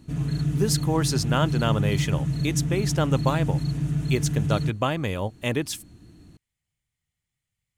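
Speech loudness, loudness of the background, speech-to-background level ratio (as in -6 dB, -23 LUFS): -27.0 LUFS, -26.0 LUFS, -1.0 dB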